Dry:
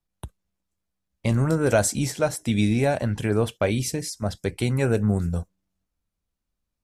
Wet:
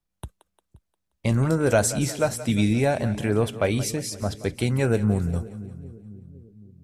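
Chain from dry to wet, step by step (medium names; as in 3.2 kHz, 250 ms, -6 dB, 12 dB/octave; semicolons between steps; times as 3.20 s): two-band feedback delay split 370 Hz, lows 508 ms, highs 176 ms, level -15 dB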